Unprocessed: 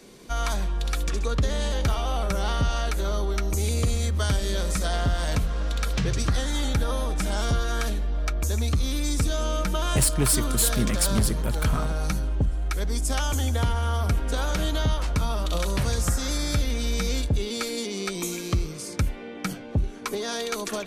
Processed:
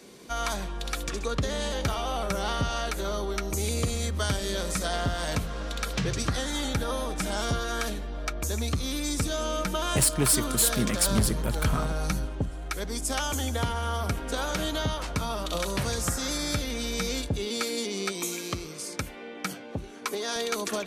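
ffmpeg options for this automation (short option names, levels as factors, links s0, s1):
-af "asetnsamples=n=441:p=0,asendcmd='11.06 highpass f 61;12.26 highpass f 160;18.12 highpass f 380;20.36 highpass f 100',highpass=f=130:p=1"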